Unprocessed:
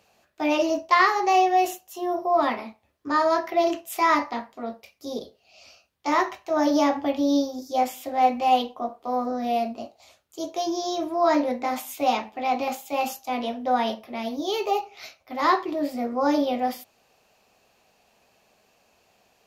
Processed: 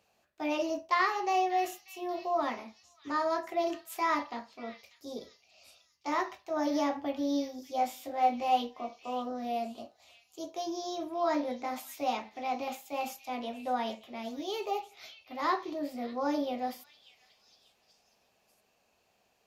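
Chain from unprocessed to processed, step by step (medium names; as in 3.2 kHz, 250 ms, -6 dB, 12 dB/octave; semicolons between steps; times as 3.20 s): 7.77–8.81 s: doubling 21 ms -5.5 dB; repeats whose band climbs or falls 590 ms, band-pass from 3.1 kHz, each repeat 0.7 oct, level -10 dB; trim -9 dB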